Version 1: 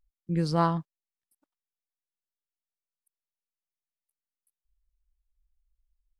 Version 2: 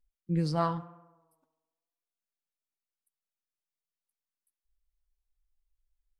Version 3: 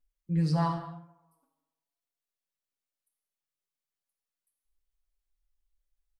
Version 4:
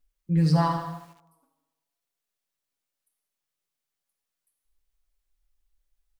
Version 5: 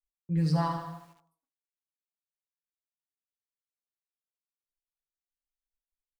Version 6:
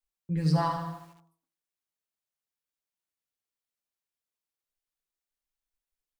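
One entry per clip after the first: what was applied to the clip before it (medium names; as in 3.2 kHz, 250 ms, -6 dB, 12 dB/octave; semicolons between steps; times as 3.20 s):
flange 0.47 Hz, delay 4.1 ms, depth 5.9 ms, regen +42%; tape echo 68 ms, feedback 73%, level -16 dB, low-pass 2.6 kHz
comb 7.1 ms, depth 65%; gated-style reverb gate 290 ms falling, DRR 3.5 dB; trim -3.5 dB
bit-crushed delay 80 ms, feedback 55%, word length 9-bit, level -10 dB; trim +5.5 dB
expander -55 dBFS; trim -5.5 dB
de-hum 166.8 Hz, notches 2; trim +2.5 dB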